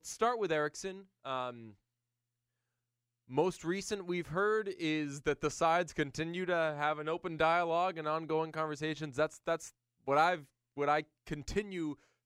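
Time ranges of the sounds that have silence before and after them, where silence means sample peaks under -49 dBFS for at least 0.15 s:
1.25–1.71 s
3.29–9.70 s
10.07–10.43 s
10.77–11.03 s
11.27–11.94 s

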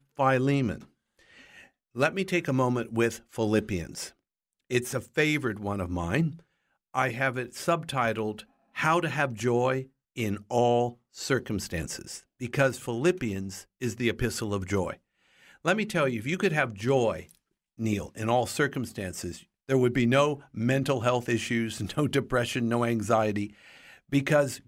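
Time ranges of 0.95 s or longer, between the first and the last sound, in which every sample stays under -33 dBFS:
0.76–1.96 s

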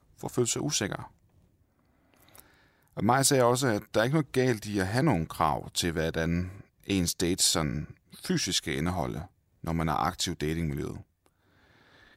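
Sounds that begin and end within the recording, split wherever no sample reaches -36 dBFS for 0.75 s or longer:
2.36–11.00 s

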